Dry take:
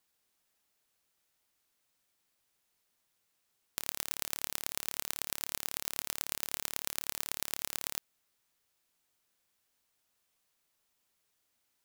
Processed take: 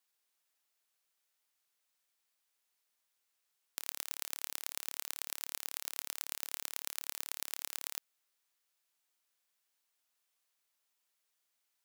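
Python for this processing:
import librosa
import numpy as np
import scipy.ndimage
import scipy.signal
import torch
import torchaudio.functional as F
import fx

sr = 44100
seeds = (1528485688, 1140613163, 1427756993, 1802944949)

y = fx.highpass(x, sr, hz=750.0, slope=6)
y = F.gain(torch.from_numpy(y), -3.5).numpy()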